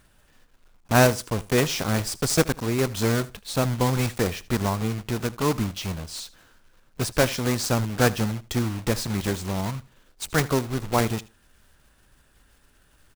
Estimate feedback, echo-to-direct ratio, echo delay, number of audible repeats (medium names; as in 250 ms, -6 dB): 19%, -20.0 dB, 78 ms, 2